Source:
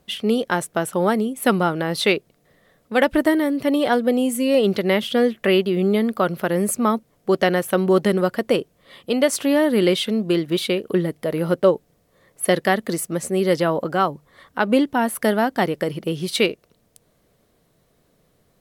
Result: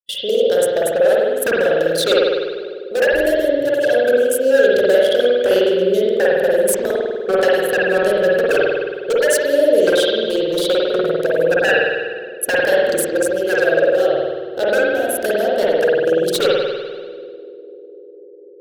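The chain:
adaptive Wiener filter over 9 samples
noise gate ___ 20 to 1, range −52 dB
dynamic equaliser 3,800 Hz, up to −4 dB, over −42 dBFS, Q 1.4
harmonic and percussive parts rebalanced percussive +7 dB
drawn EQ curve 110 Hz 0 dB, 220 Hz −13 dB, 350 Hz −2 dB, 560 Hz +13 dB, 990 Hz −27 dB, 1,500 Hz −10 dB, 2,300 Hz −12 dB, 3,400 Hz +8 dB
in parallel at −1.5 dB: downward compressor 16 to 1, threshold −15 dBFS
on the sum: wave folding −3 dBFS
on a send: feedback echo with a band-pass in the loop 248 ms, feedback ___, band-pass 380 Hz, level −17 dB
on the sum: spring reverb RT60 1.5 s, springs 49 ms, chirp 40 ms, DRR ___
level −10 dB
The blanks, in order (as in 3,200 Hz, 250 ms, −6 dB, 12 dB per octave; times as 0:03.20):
−46 dBFS, 85%, −5.5 dB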